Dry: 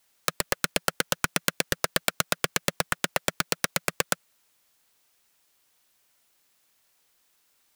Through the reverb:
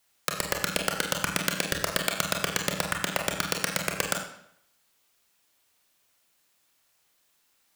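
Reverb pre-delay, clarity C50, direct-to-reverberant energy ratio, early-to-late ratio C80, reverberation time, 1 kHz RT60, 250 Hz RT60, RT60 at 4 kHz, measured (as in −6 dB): 26 ms, 6.0 dB, 2.0 dB, 8.5 dB, 0.70 s, 0.70 s, 0.70 s, 0.60 s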